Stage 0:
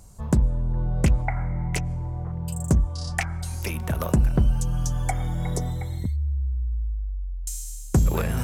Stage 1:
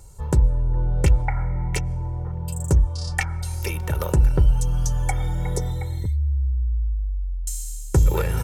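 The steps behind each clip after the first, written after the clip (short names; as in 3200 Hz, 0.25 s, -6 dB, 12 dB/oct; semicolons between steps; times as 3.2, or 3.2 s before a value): comb 2.2 ms, depth 69%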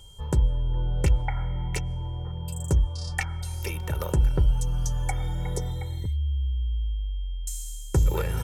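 whine 3200 Hz -47 dBFS; gain -4.5 dB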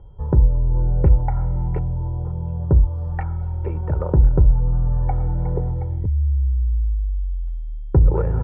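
Bessel low-pass 840 Hz, order 4; gain +7.5 dB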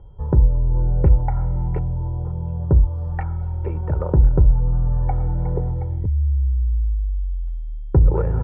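nothing audible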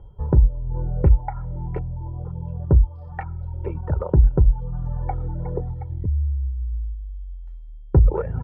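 reverb removal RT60 1.5 s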